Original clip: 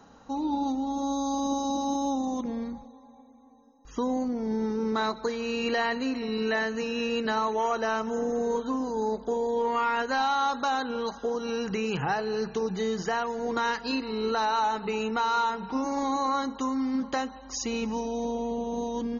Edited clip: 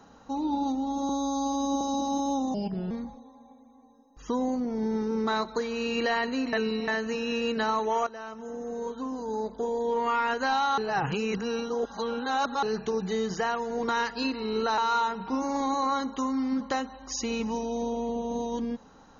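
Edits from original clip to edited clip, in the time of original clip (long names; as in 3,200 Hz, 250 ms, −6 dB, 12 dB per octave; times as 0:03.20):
0:01.09–0:01.57: time-stretch 1.5×
0:02.30–0:02.59: play speed 79%
0:06.21–0:06.56: reverse
0:07.75–0:09.79: fade in, from −14.5 dB
0:10.46–0:12.31: reverse
0:14.46–0:15.20: remove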